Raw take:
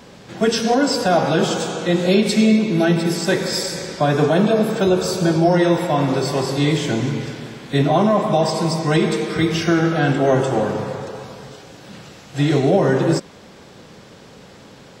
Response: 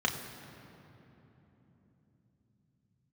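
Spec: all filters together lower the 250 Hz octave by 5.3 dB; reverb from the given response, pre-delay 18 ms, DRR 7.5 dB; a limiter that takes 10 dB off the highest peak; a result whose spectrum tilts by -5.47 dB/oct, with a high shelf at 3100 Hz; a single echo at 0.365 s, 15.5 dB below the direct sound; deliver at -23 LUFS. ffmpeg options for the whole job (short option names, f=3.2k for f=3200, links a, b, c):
-filter_complex "[0:a]equalizer=f=250:t=o:g=-8,highshelf=f=3.1k:g=-4.5,alimiter=limit=-17dB:level=0:latency=1,aecho=1:1:365:0.168,asplit=2[a][b];[1:a]atrim=start_sample=2205,adelay=18[c];[b][c]afir=irnorm=-1:irlink=0,volume=-16.5dB[d];[a][d]amix=inputs=2:normalize=0,volume=2dB"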